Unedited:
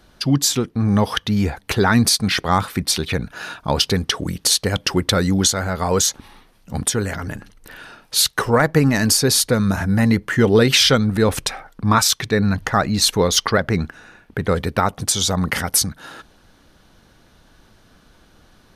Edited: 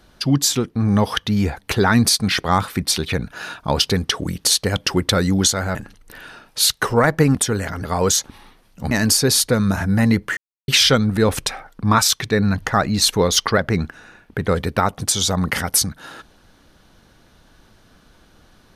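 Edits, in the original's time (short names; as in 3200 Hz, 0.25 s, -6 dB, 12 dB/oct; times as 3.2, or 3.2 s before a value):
5.75–6.81 swap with 7.31–8.91
10.37–10.68 mute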